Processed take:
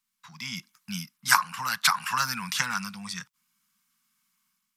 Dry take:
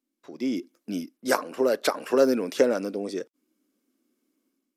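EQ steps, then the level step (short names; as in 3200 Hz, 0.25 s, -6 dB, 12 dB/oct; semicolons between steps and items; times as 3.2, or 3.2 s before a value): elliptic band-stop 170–990 Hz, stop band 40 dB; +8.5 dB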